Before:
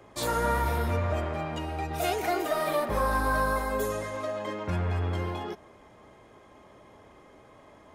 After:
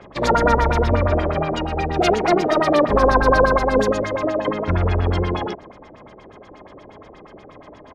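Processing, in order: harmony voices -12 st -6 dB, -7 st -15 dB; LFO low-pass sine 8.4 Hz 400–5800 Hz; trim +8 dB

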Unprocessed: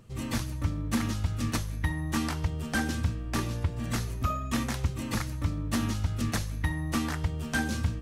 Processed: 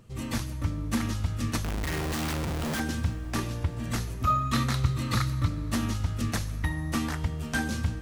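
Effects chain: 1.64–2.80 s: Schmitt trigger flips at -47.5 dBFS; 4.27–5.48 s: graphic EQ with 31 bands 125 Hz +11 dB, 800 Hz -3 dB, 1.25 kHz +9 dB, 2 kHz +3 dB, 4 kHz +10 dB; on a send: reverberation RT60 5.6 s, pre-delay 13 ms, DRR 16 dB

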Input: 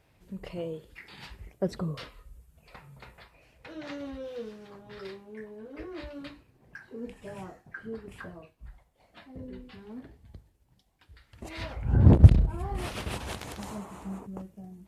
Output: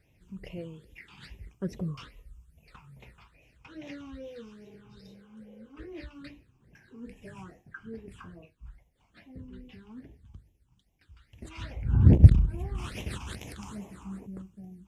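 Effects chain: spectral replace 4.67–5.66 s, 360–3600 Hz both; phase shifter stages 8, 2.4 Hz, lowest notch 530–1400 Hz; trim -1 dB

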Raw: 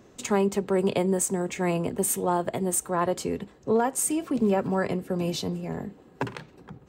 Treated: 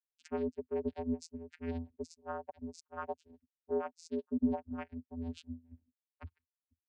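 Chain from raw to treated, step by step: expander on every frequency bin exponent 3; transient shaper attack +1 dB, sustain -8 dB; vocoder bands 8, square 83.2 Hz; trim -5.5 dB

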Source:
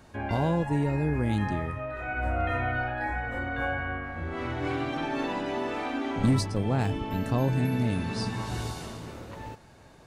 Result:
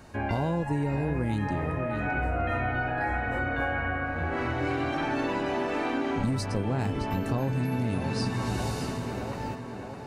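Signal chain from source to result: band-stop 3.4 kHz, Q 10; on a send: tape echo 618 ms, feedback 72%, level -8 dB, low-pass 2.7 kHz; on the sum: compression, threshold -28 dBFS, peak gain reduction 9.5 dB; trim +3.5 dB

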